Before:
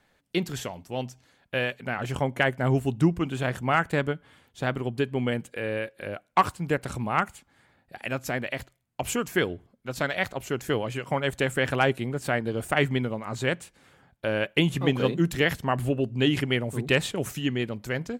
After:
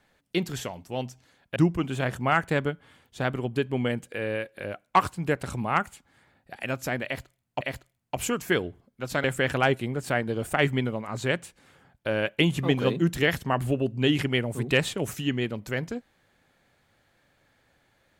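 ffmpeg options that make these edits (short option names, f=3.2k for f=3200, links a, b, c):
-filter_complex "[0:a]asplit=4[a][b][c][d];[a]atrim=end=1.562[e];[b]atrim=start=2.978:end=9.032[f];[c]atrim=start=8.468:end=10.102[g];[d]atrim=start=11.418[h];[e][f]acrossfade=d=0.004:c1=hsin:c2=hsin[i];[i][g]acrossfade=d=0.004:c1=hsin:c2=hsin[j];[j][h]acrossfade=d=0.004:c1=hsin:c2=hsin"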